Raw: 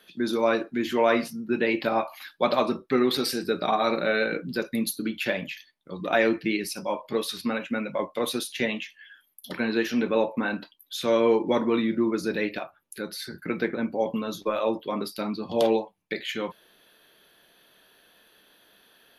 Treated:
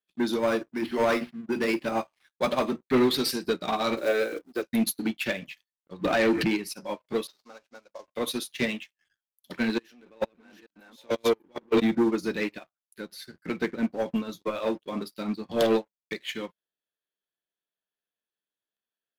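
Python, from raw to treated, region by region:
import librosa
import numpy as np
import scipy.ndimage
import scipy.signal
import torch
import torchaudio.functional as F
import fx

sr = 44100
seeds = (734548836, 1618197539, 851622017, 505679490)

y = fx.chain(x, sr, fx.hum_notches(base_hz=60, count=8),
    fx.resample_linear(factor=6), at=(0.39, 2.81))
y = fx.chain(y, sr, fx.block_float(bits=5),
    fx.highpass(hz=340.0, slope=24),
    fx.tilt_shelf(db=7.5, hz=780.0), at=(3.97, 4.63))
y = fx.chain(y, sr, fx.high_shelf(hz=2700.0, db=-6.0),
    fx.pre_swell(db_per_s=21.0), at=(6.04, 6.63))
y = fx.chain(y, sr, fx.cvsd(bps=32000),
    fx.highpass(hz=630.0, slope=12),
    fx.peak_eq(hz=2300.0, db=-13.0, octaves=1.7), at=(7.27, 8.08))
y = fx.chain(y, sr, fx.reverse_delay(ms=443, wet_db=-2.0),
    fx.highpass(hz=200.0, slope=12),
    fx.level_steps(step_db=20), at=(9.78, 11.82))
y = fx.dynamic_eq(y, sr, hz=800.0, q=0.71, threshold_db=-37.0, ratio=4.0, max_db=-6)
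y = fx.leveller(y, sr, passes=3)
y = fx.upward_expand(y, sr, threshold_db=-34.0, expansion=2.5)
y = F.gain(torch.from_numpy(y), -3.0).numpy()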